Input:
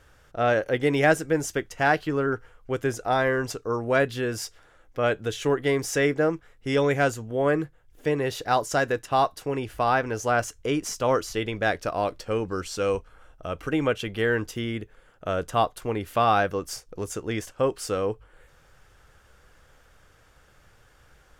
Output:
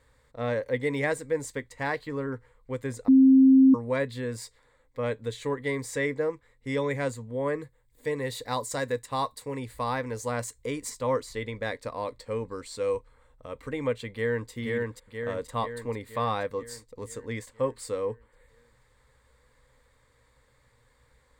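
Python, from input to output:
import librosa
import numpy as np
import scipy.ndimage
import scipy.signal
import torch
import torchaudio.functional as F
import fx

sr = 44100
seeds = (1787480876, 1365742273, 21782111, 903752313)

y = fx.high_shelf(x, sr, hz=5500.0, db=8.5, at=(7.62, 10.9))
y = fx.echo_throw(y, sr, start_s=14.11, length_s=0.4, ms=480, feedback_pct=60, wet_db=-2.0)
y = fx.edit(y, sr, fx.bleep(start_s=3.08, length_s=0.66, hz=265.0, db=-9.5), tone=tone)
y = fx.ripple_eq(y, sr, per_octave=0.99, db=12)
y = y * librosa.db_to_amplitude(-8.0)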